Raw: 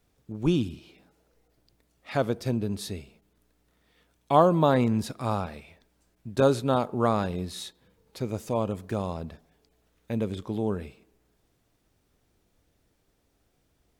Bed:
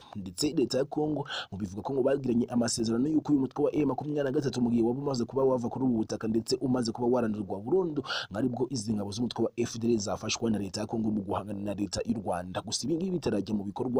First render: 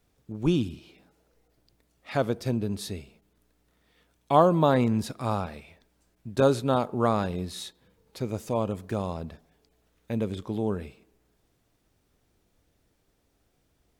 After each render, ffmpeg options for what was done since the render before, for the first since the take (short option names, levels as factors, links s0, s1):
-af anull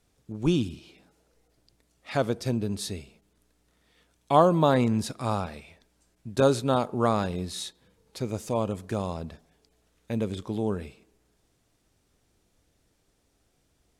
-af "lowpass=9400,highshelf=f=6300:g=9.5"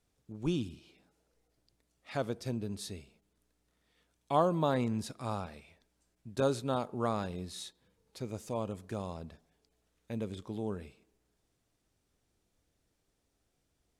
-af "volume=0.376"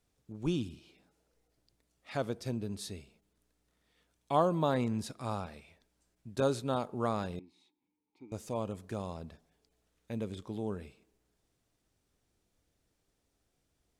-filter_complex "[0:a]asettb=1/sr,asplit=3[s0][s1][s2];[s0]atrim=end=7.394[s3];[s1]atrim=start=7.39:end=8.32,asetpts=PTS-STARTPTS,afade=t=in:d=0.004:c=qsin,afade=t=out:st=0.926:d=0.004:c=qsin,asplit=3[s4][s5][s6];[s4]bandpass=f=300:t=q:w=8,volume=1[s7];[s5]bandpass=f=870:t=q:w=8,volume=0.501[s8];[s6]bandpass=f=2240:t=q:w=8,volume=0.355[s9];[s7][s8][s9]amix=inputs=3:normalize=0[s10];[s2]atrim=start=8.316[s11];[s3][s10]acrossfade=d=0.004:c1=hsin:c2=qsin[s12];[s12][s11]acrossfade=d=0.004:c1=qsin:c2=hsin"